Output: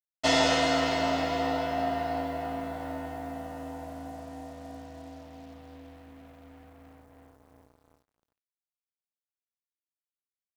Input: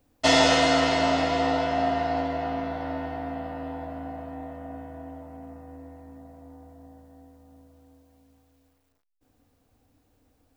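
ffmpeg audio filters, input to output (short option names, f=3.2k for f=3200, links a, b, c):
-af "acrusher=bits=7:mix=0:aa=0.5,volume=-4.5dB"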